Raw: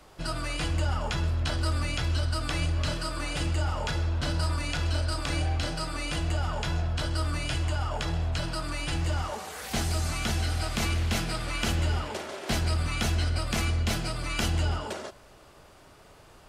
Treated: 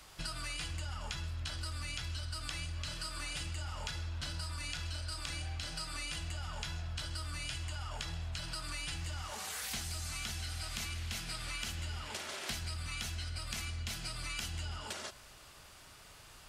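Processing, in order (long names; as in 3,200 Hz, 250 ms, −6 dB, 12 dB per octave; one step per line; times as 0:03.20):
guitar amp tone stack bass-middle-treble 5-5-5
downward compressor, threshold −48 dBFS, peak gain reduction 13 dB
level +10.5 dB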